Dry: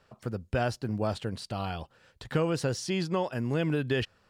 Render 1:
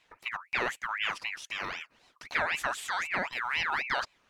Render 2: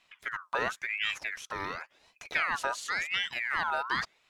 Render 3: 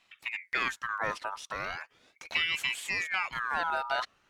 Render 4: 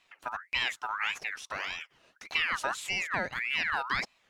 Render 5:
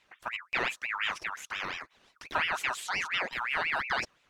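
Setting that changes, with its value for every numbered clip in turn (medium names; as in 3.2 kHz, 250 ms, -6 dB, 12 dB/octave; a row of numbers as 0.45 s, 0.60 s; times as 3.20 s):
ring modulator with a swept carrier, at: 3.9 Hz, 0.93 Hz, 0.39 Hz, 1.7 Hz, 5.7 Hz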